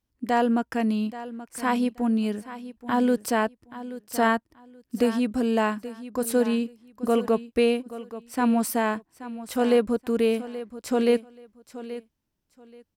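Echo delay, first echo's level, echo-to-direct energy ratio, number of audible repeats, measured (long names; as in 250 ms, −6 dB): 829 ms, −14.5 dB, −14.5 dB, 2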